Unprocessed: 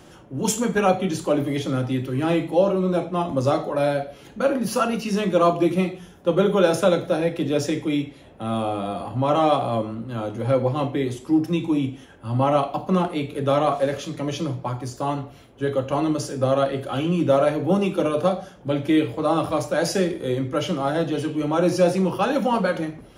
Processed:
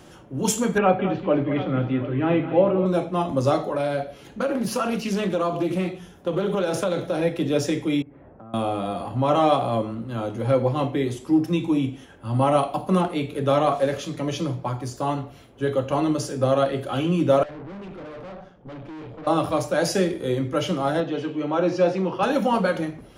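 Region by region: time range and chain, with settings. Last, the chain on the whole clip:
0:00.78–0:02.86: low-pass filter 2,800 Hz 24 dB per octave + multi-tap delay 210/732 ms −11.5/−15 dB
0:03.74–0:07.21: downward compressor, threshold −19 dBFS + highs frequency-modulated by the lows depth 0.16 ms
0:08.02–0:08.54: low-pass filter 1,600 Hz 24 dB per octave + downward compressor, threshold −41 dBFS
0:12.34–0:13.01: parametric band 10,000 Hz +11.5 dB 0.52 octaves + notch filter 6,300 Hz, Q 20
0:17.43–0:19.27: tube saturation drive 35 dB, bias 0.75 + head-to-tape spacing loss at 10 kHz 24 dB
0:21.00–0:22.23: high-pass filter 250 Hz 6 dB per octave + high-frequency loss of the air 150 metres
whole clip: no processing

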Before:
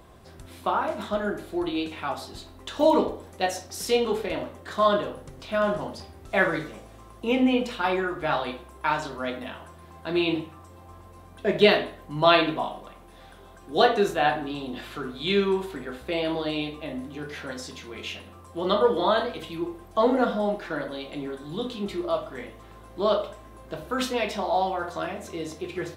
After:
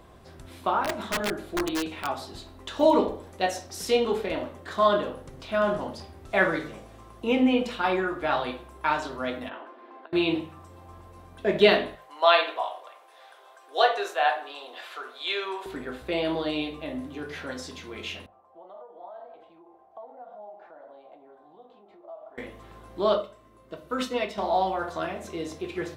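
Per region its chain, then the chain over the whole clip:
0:00.84–0:02.07: wrap-around overflow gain 20.5 dB + one half of a high-frequency compander decoder only
0:09.49–0:10.13: Butterworth high-pass 240 Hz 72 dB per octave + compressor whose output falls as the input rises −39 dBFS, ratio −0.5 + high-frequency loss of the air 340 metres
0:11.95–0:15.66: high-pass filter 530 Hz 24 dB per octave + high-shelf EQ 8,400 Hz −2.5 dB
0:18.26–0:22.38: downward compressor 10 to 1, threshold −33 dBFS + resonant band-pass 740 Hz, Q 4.4
0:23.15–0:24.38: notch comb filter 820 Hz + expander for the loud parts, over −39 dBFS
whole clip: high-shelf EQ 6,800 Hz −4.5 dB; mains-hum notches 50/100/150/200 Hz

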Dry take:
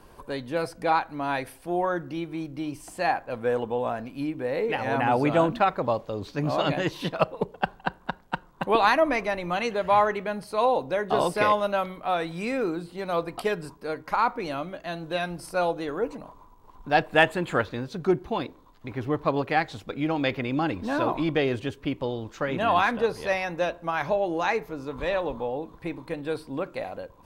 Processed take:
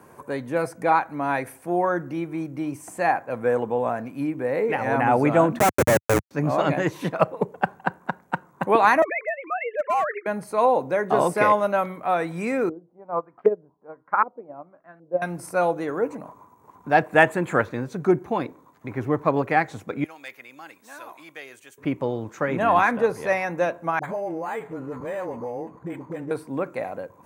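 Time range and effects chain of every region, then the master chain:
0:05.59–0:06.31: parametric band 460 Hz +10 dB 1.8 octaves + comparator with hysteresis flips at −19.5 dBFS
0:09.02–0:10.26: three sine waves on the formant tracks + high-pass filter 890 Hz 6 dB per octave + hard clipping −21.5 dBFS
0:12.69–0:15.22: auto-filter low-pass saw up 1.3 Hz 460–1,700 Hz + expander for the loud parts 2.5 to 1, over −30 dBFS
0:20.04–0:21.78: first difference + hard clipping −27 dBFS
0:23.99–0:26.31: all-pass dispersion highs, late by 47 ms, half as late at 580 Hz + downward compressor 2.5 to 1, threshold −32 dBFS + linearly interpolated sample-rate reduction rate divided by 8×
whole clip: high-pass filter 100 Hz 24 dB per octave; flat-topped bell 3,800 Hz −10.5 dB 1.1 octaves; level +3.5 dB

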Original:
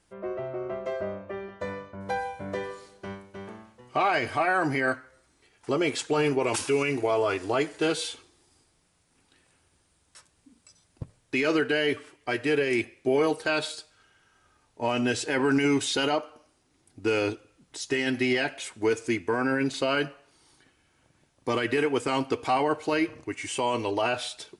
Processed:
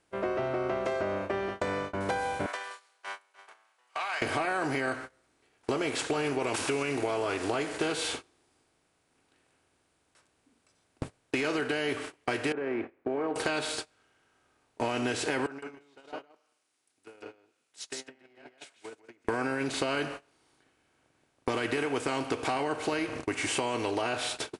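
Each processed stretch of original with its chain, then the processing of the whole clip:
0:02.46–0:04.22: high-pass filter 950 Hz 24 dB per octave + downward compressor 8 to 1, threshold −39 dBFS
0:12.52–0:13.36: low-pass filter 1,500 Hz 24 dB per octave + low shelf with overshoot 190 Hz −8.5 dB, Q 1.5 + downward compressor 2 to 1, threshold −43 dBFS
0:15.46–0:19.25: treble cut that deepens with the level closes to 720 Hz, closed at −23 dBFS + first difference + single-tap delay 161 ms −3 dB
whole clip: compressor on every frequency bin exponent 0.6; noise gate −33 dBFS, range −25 dB; downward compressor, threshold −27 dBFS

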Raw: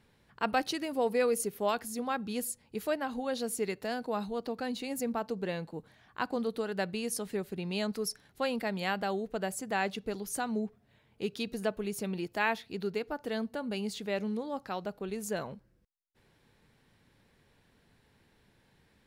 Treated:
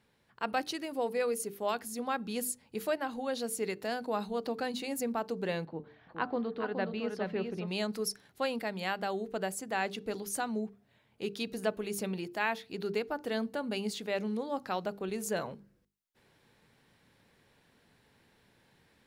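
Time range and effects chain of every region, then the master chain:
0:05.65–0:07.68: high-frequency loss of the air 290 metres + hum removal 148 Hz, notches 9 + single-tap delay 419 ms −5.5 dB
whole clip: low-shelf EQ 75 Hz −10.5 dB; mains-hum notches 50/100/150/200/250/300/350/400/450 Hz; speech leveller within 3 dB 0.5 s

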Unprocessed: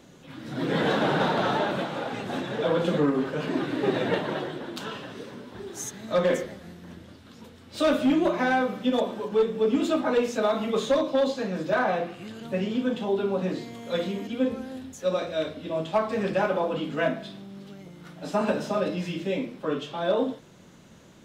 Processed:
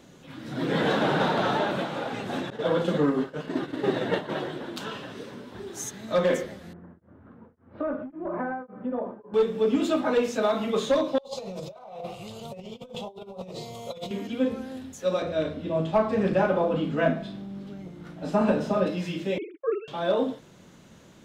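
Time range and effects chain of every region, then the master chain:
0:02.50–0:04.30: downward expander −25 dBFS + notch filter 2,400 Hz
0:06.73–0:09.34: low-pass filter 1,500 Hz 24 dB per octave + downward compressor, threshold −25 dBFS + tremolo along a rectified sine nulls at 1.8 Hz
0:11.18–0:14.11: compressor whose output falls as the input rises −32 dBFS, ratio −0.5 + phaser with its sweep stopped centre 690 Hz, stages 4
0:15.22–0:18.87: spectral tilt −2 dB per octave + double-tracking delay 37 ms −10.5 dB
0:19.38–0:19.88: three sine waves on the formant tracks + noise gate −46 dBFS, range −37 dB
whole clip: no processing

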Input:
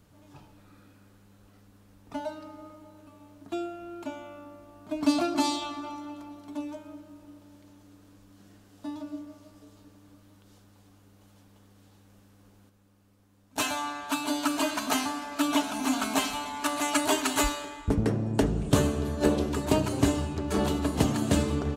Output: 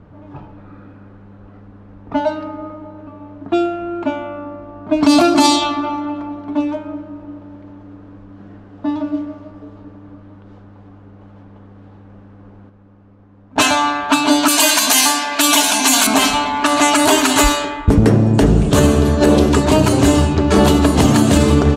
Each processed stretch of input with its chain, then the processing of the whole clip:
0:14.48–0:16.07: spectral tilt +3.5 dB per octave + notch filter 1,300 Hz, Q 7.9 + one half of a high-frequency compander encoder only
whole clip: low-pass that shuts in the quiet parts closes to 1,300 Hz, open at −23 dBFS; boost into a limiter +18 dB; level −1 dB

